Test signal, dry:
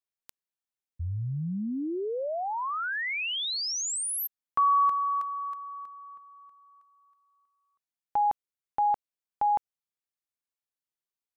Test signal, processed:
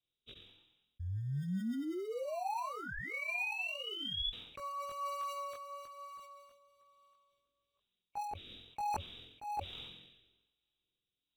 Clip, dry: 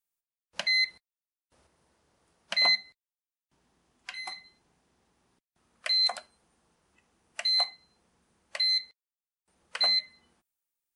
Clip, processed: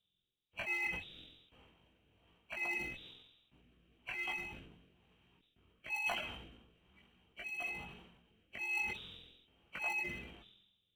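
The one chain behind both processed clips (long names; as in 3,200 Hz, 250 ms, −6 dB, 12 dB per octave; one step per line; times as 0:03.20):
hearing-aid frequency compression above 2,200 Hz 4 to 1
notch filter 560 Hz, Q 12
in parallel at −11 dB: decimation without filtering 26×
on the sum: parametric band 89 Hz +8 dB 0.74 octaves
multi-voice chorus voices 6, 0.26 Hz, delay 19 ms, depth 3.7 ms
reversed playback
downward compressor 10 to 1, threshold −37 dBFS
reversed playback
rotating-speaker cabinet horn 1.1 Hz
level that may fall only so fast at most 54 dB per second
level +3 dB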